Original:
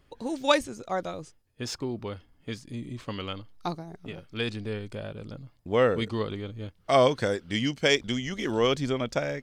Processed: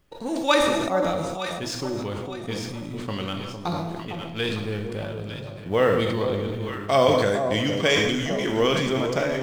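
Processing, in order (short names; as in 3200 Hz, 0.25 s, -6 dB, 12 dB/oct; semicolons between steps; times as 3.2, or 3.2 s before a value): G.711 law mismatch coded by A; in parallel at -2 dB: compressor, threshold -34 dBFS, peak gain reduction 17 dB; 7.06–8.12 on the sum: notch 5300 Hz, Q 10; on a send: echo with dull and thin repeats by turns 0.454 s, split 1000 Hz, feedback 63%, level -7 dB; on the sum: non-linear reverb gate 0.35 s falling, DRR 4.5 dB; sustainer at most 28 dB/s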